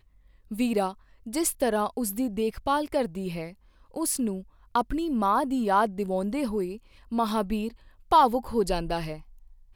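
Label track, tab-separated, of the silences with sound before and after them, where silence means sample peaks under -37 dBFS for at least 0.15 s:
0.920000	1.270000	silence
3.500000	3.940000	silence
4.420000	4.750000	silence
6.770000	7.120000	silence
7.700000	8.110000	silence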